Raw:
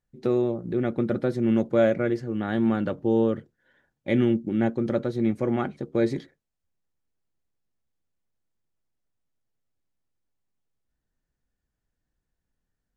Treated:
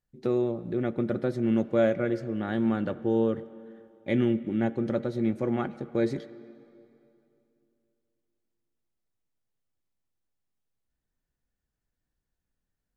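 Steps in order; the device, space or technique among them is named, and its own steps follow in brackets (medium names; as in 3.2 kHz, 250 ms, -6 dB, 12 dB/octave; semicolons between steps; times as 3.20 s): filtered reverb send (on a send: high-pass 210 Hz 12 dB/octave + low-pass 3.9 kHz + reverberation RT60 2.8 s, pre-delay 69 ms, DRR 16 dB); on the sum: trim -3 dB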